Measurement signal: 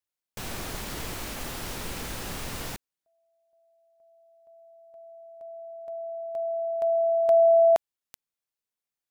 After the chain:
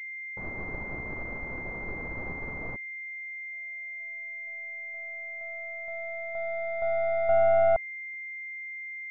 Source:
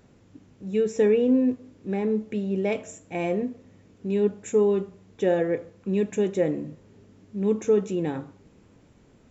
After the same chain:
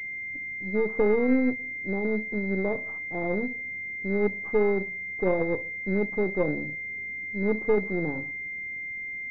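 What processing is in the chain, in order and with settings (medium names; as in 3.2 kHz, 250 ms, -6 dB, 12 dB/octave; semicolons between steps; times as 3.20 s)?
partial rectifier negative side -7 dB; class-D stage that switches slowly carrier 2.1 kHz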